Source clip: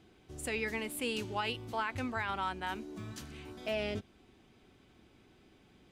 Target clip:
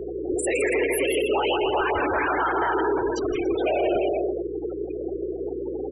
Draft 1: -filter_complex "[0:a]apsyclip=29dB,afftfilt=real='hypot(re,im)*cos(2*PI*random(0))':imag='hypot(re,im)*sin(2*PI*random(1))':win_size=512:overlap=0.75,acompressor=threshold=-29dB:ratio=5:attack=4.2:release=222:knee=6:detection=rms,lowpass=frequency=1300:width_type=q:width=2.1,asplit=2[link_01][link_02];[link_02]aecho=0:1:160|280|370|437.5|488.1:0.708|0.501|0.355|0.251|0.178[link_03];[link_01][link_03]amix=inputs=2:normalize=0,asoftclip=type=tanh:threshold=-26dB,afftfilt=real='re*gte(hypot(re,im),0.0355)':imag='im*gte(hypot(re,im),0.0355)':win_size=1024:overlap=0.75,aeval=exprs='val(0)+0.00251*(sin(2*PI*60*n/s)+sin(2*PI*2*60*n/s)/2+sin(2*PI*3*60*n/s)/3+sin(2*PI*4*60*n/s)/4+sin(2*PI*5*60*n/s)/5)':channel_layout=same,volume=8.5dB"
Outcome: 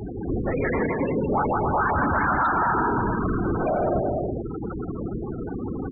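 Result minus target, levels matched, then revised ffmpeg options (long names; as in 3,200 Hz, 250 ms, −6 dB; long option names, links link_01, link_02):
1,000 Hz band +3.0 dB; 250 Hz band +2.0 dB
-filter_complex "[0:a]apsyclip=29dB,afftfilt=real='hypot(re,im)*cos(2*PI*random(0))':imag='hypot(re,im)*sin(2*PI*random(1))':win_size=512:overlap=0.75,acompressor=threshold=-29dB:ratio=5:attack=4.2:release=222:knee=6:detection=rms,lowshelf=frequency=280:width_type=q:width=3:gain=-10.5,asplit=2[link_01][link_02];[link_02]aecho=0:1:160|280|370|437.5|488.1:0.708|0.501|0.355|0.251|0.178[link_03];[link_01][link_03]amix=inputs=2:normalize=0,asoftclip=type=tanh:threshold=-26dB,afftfilt=real='re*gte(hypot(re,im),0.0355)':imag='im*gte(hypot(re,im),0.0355)':win_size=1024:overlap=0.75,aeval=exprs='val(0)+0.00251*(sin(2*PI*60*n/s)+sin(2*PI*2*60*n/s)/2+sin(2*PI*3*60*n/s)/3+sin(2*PI*4*60*n/s)/4+sin(2*PI*5*60*n/s)/5)':channel_layout=same,volume=8.5dB"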